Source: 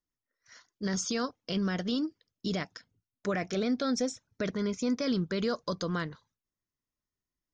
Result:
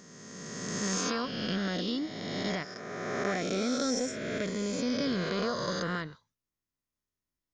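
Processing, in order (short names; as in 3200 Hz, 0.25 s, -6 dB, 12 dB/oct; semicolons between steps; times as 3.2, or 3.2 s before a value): spectral swells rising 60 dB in 2.22 s; gain -4 dB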